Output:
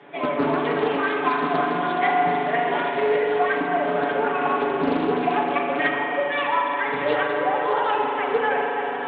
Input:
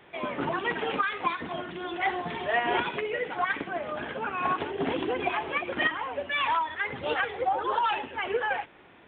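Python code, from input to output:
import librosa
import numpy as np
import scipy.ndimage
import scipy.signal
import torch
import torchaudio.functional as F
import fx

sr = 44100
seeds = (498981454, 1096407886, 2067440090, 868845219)

p1 = scipy.signal.sosfilt(scipy.signal.butter(4, 170.0, 'highpass', fs=sr, output='sos'), x)
p2 = fx.peak_eq(p1, sr, hz=2400.0, db=-5.0, octaves=2.3)
p3 = p2 + 0.99 * np.pad(p2, (int(7.0 * sr / 1000.0), 0))[:len(p2)]
p4 = p3 + fx.echo_alternate(p3, sr, ms=292, hz=1100.0, feedback_pct=82, wet_db=-10.5, dry=0)
p5 = fx.rider(p4, sr, range_db=5, speed_s=0.5)
p6 = fx.air_absorb(p5, sr, metres=140.0)
p7 = fx.rev_spring(p6, sr, rt60_s=3.4, pass_ms=(40,), chirp_ms=75, drr_db=0.5)
p8 = fx.doppler_dist(p7, sr, depth_ms=0.28)
y = p8 * 10.0 ** (3.5 / 20.0)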